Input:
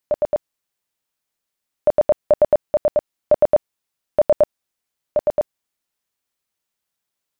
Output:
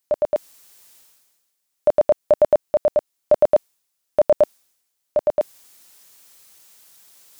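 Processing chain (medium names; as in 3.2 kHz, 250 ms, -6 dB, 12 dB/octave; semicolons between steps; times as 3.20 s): tone controls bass -4 dB, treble +7 dB; reverse; upward compressor, threshold -31 dBFS; reverse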